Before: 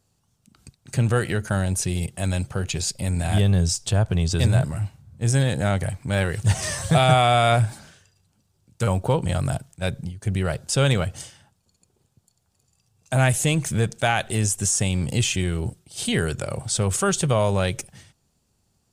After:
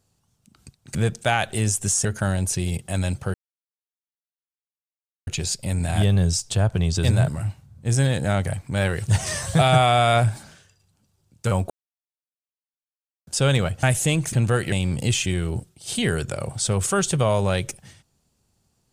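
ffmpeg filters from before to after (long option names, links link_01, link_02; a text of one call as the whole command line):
ffmpeg -i in.wav -filter_complex "[0:a]asplit=9[link_01][link_02][link_03][link_04][link_05][link_06][link_07][link_08][link_09];[link_01]atrim=end=0.952[link_10];[link_02]atrim=start=13.718:end=14.822[link_11];[link_03]atrim=start=1.338:end=2.63,asetpts=PTS-STARTPTS,afade=type=out:start_time=1.288:duration=0.004:curve=hsin,apad=pad_dur=1.93[link_12];[link_04]atrim=start=2.63:end=9.06,asetpts=PTS-STARTPTS,afade=type=in:duration=0.004:curve=hsin,afade=type=out:start_time=6.426:duration=0.004:curve=hsin[link_13];[link_05]atrim=start=9.06:end=10.63,asetpts=PTS-STARTPTS,volume=0[link_14];[link_06]atrim=start=10.63:end=11.192,asetpts=PTS-STARTPTS,afade=type=in:duration=0.004:curve=hsin[link_15];[link_07]atrim=start=13.218:end=13.722[link_16];[link_08]atrim=start=0.948:end=1.342[link_17];[link_09]atrim=start=14.818[link_18];[link_10][link_11]acrossfade=duration=0.004:curve1=hsin:curve2=hsin[link_19];[link_12][link_13][link_14][link_15]concat=n=4:v=0:a=1[link_20];[link_19][link_20]acrossfade=duration=0.004:curve1=hsin:curve2=hsin[link_21];[link_21][link_16]acrossfade=duration=0.004:curve1=hsin:curve2=hsin[link_22];[link_22][link_17]acrossfade=duration=0.004:curve1=hsin:curve2=hsin[link_23];[link_23][link_18]acrossfade=duration=0.004:curve1=hsin:curve2=hsin" out.wav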